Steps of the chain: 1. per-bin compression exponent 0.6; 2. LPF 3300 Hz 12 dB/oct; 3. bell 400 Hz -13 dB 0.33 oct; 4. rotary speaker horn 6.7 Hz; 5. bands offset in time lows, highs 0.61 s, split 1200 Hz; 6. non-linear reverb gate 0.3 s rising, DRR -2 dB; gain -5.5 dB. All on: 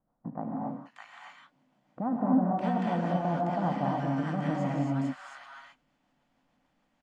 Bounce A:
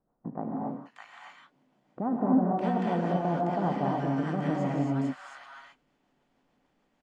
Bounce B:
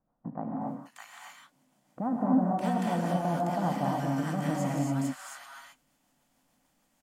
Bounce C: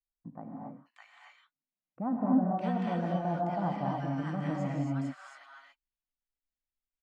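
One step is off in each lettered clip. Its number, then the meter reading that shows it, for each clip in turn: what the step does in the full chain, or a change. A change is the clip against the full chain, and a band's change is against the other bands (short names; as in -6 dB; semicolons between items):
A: 3, 500 Hz band +2.0 dB; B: 2, 4 kHz band +3.5 dB; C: 1, momentary loudness spread change -2 LU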